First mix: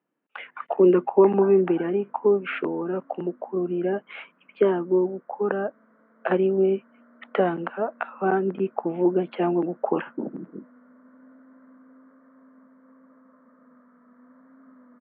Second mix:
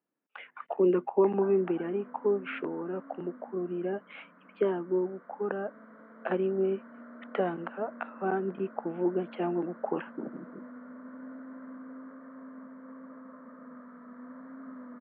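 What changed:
speech −7.5 dB
background +7.5 dB

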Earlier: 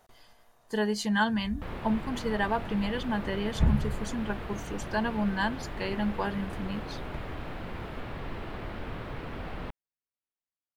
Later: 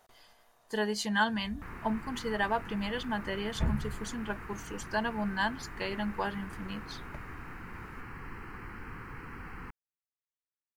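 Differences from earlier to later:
background: add phaser with its sweep stopped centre 1,500 Hz, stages 4
master: add low-shelf EQ 350 Hz −7 dB

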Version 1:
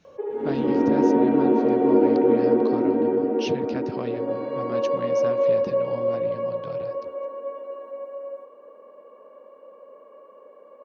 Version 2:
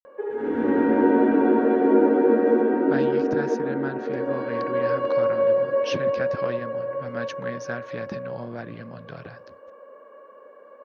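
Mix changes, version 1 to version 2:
speech: entry +2.45 s
master: add parametric band 1,600 Hz +13 dB 0.47 octaves

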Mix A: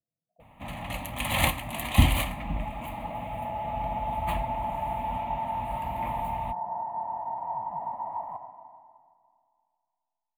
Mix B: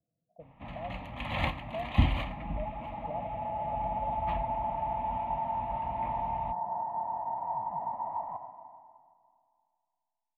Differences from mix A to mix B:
speech +10.0 dB
first sound −4.5 dB
master: add high-frequency loss of the air 240 metres

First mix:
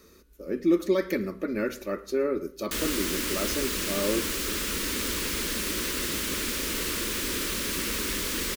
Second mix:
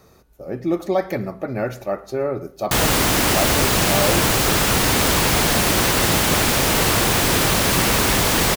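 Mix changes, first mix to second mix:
background +10.5 dB
master: remove phaser with its sweep stopped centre 310 Hz, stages 4

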